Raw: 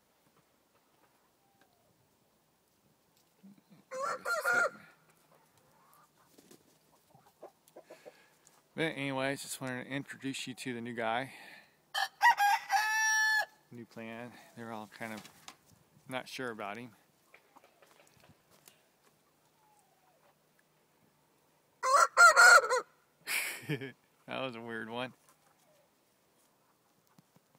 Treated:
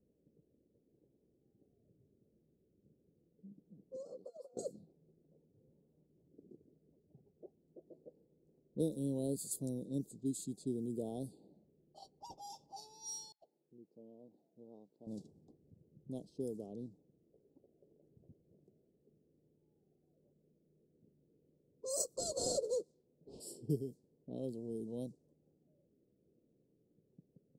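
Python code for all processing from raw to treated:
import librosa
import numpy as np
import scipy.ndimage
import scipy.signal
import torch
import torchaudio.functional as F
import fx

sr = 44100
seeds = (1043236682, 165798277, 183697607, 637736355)

y = fx.chain(x, sr, fx.high_shelf(hz=4000.0, db=-5.0),
    fx.over_compress(threshold_db=-36.0, ratio=-0.5),
    fx.highpass(hz=680.0, slope=6), at=(3.96, 4.57))
y = fx.chain(y, sr, fx.bandpass_q(hz=2900.0, q=0.68),
    fx.over_compress(threshold_db=-43.0, ratio=-0.5), at=(13.32, 15.07))
y = fx.chain(y, sr, fx.cvsd(bps=64000),
    fx.lowpass(hz=5000.0, slope=12),
    fx.low_shelf(hz=90.0, db=-9.5), at=(22.18, 23.4))
y = scipy.signal.sosfilt(scipy.signal.ellip(3, 1.0, 80, [440.0, 7500.0], 'bandstop', fs=sr, output='sos'), y)
y = fx.band_shelf(y, sr, hz=3000.0, db=12.5, octaves=1.7)
y = fx.env_lowpass(y, sr, base_hz=620.0, full_db=-39.0)
y = y * 10.0 ** (2.5 / 20.0)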